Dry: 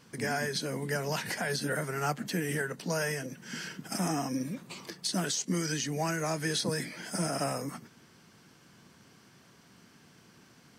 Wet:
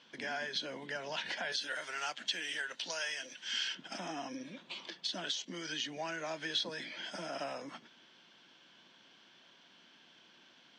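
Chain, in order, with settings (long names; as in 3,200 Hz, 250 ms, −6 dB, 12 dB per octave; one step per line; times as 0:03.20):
0:01.52–0:03.75: spectral tilt +4 dB per octave
downward compressor 2.5 to 1, threshold −32 dBFS, peak gain reduction 7 dB
loudspeaker in its box 440–4,900 Hz, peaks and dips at 440 Hz −9 dB, 770 Hz −4 dB, 1,200 Hz −8 dB, 2,000 Hz −4 dB, 3,300 Hz +9 dB, 4,800 Hz −5 dB
level +1 dB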